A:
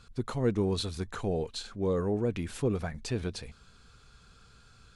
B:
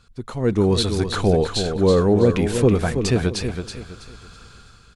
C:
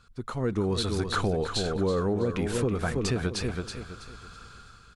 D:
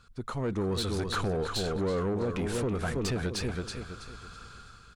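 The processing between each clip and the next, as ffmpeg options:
-af "dynaudnorm=f=110:g=9:m=13dB,aecho=1:1:326|652|978|1304:0.422|0.131|0.0405|0.0126"
-af "acompressor=threshold=-19dB:ratio=6,equalizer=f=1.3k:t=o:w=0.63:g=6,volume=-4.5dB"
-af "asoftclip=type=tanh:threshold=-24.5dB"

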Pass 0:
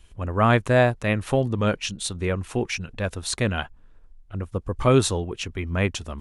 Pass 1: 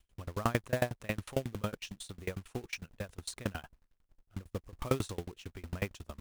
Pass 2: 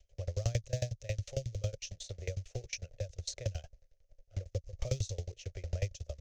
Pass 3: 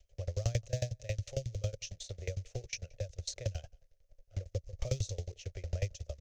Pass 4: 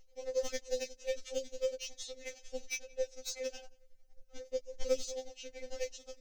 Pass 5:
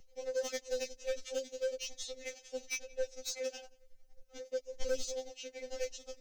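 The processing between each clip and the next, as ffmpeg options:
-af "agate=range=-7dB:threshold=-45dB:ratio=16:detection=peak,acrusher=bits=3:mode=log:mix=0:aa=0.000001,aeval=exprs='val(0)*pow(10,-29*if(lt(mod(11*n/s,1),2*abs(11)/1000),1-mod(11*n/s,1)/(2*abs(11)/1000),(mod(11*n/s,1)-2*abs(11)/1000)/(1-2*abs(11)/1000))/20)':c=same,volume=-6dB"
-filter_complex "[0:a]firequalizer=gain_entry='entry(110,0);entry(220,-23);entry(550,10);entry(960,-22);entry(2000,-6);entry(3400,-7);entry(6300,3);entry(9300,-26)':delay=0.05:min_phase=1,acrossover=split=190|3000[a][b][c];[b]acompressor=threshold=-51dB:ratio=3[d];[a][d][c]amix=inputs=3:normalize=0,volume=6dB"
-filter_complex "[0:a]asplit=2[a][b];[b]adelay=174.9,volume=-28dB,highshelf=f=4k:g=-3.94[c];[a][c]amix=inputs=2:normalize=0"
-filter_complex "[0:a]acrossover=split=1900[a][b];[b]asoftclip=type=hard:threshold=-37dB[c];[a][c]amix=inputs=2:normalize=0,afftfilt=real='re*3.46*eq(mod(b,12),0)':imag='im*3.46*eq(mod(b,12),0)':win_size=2048:overlap=0.75,volume=5.5dB"
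-filter_complex "[0:a]acrossover=split=140[a][b];[a]tremolo=f=1:d=0.93[c];[b]asoftclip=type=tanh:threshold=-30dB[d];[c][d]amix=inputs=2:normalize=0,volume=2dB"

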